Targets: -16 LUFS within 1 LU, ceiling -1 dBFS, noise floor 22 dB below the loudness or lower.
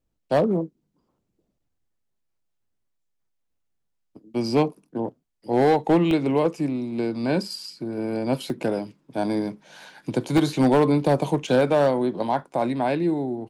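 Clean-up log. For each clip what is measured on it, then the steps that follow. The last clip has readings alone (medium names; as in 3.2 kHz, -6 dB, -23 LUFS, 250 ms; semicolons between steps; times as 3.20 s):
clipped samples 0.6%; clipping level -12.5 dBFS; dropouts 4; longest dropout 1.4 ms; loudness -23.5 LUFS; peak level -12.5 dBFS; loudness target -16.0 LUFS
-> clip repair -12.5 dBFS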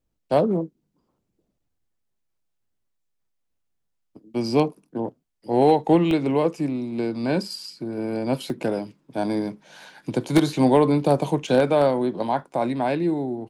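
clipped samples 0.0%; dropouts 4; longest dropout 1.4 ms
-> interpolate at 6.11/8.50/10.38/11.47 s, 1.4 ms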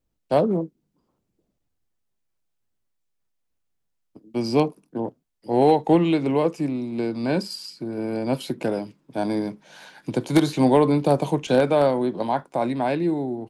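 dropouts 0; loudness -23.0 LUFS; peak level -3.5 dBFS; loudness target -16.0 LUFS
-> trim +7 dB; peak limiter -1 dBFS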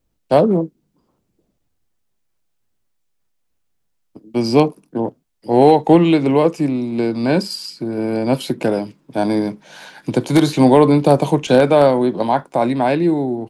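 loudness -16.5 LUFS; peak level -1.0 dBFS; noise floor -69 dBFS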